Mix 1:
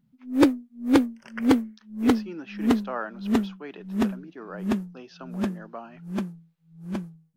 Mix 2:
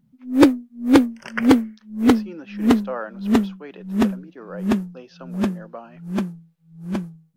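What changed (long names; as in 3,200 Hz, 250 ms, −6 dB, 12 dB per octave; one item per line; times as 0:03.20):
speech: add parametric band 520 Hz +10 dB 0.22 octaves
first sound +5.5 dB
second sound +11.5 dB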